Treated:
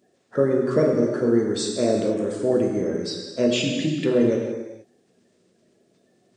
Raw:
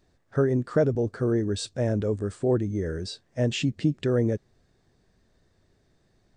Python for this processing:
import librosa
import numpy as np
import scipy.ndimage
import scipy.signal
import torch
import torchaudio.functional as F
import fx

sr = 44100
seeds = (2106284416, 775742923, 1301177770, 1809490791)

y = fx.spec_quant(x, sr, step_db=30)
y = scipy.signal.sosfilt(scipy.signal.butter(2, 230.0, 'highpass', fs=sr, output='sos'), y)
y = fx.rev_gated(y, sr, seeds[0], gate_ms=500, shape='falling', drr_db=0.0)
y = y * 10.0 ** (4.0 / 20.0)